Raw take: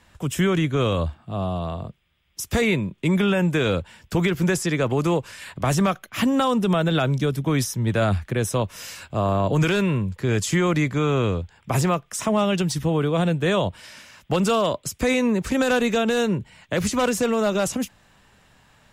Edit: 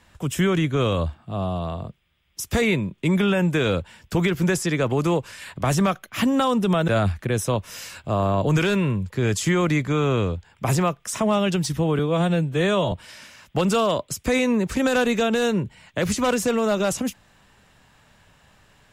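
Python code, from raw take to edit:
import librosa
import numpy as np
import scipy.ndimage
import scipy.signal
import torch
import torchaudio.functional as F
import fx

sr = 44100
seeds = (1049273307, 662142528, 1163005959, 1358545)

y = fx.edit(x, sr, fx.cut(start_s=6.88, length_s=1.06),
    fx.stretch_span(start_s=13.05, length_s=0.62, factor=1.5), tone=tone)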